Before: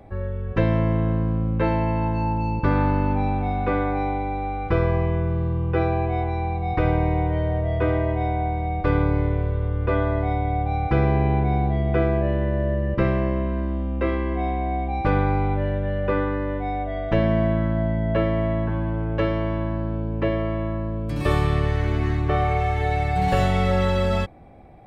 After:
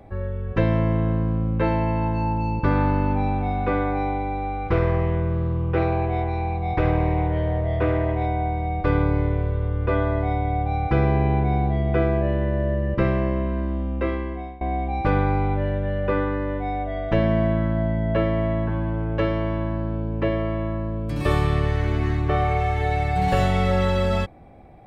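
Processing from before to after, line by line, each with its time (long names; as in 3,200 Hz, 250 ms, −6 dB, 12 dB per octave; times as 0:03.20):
0:04.66–0:08.26: highs frequency-modulated by the lows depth 0.19 ms
0:13.77–0:14.61: fade out equal-power, to −21.5 dB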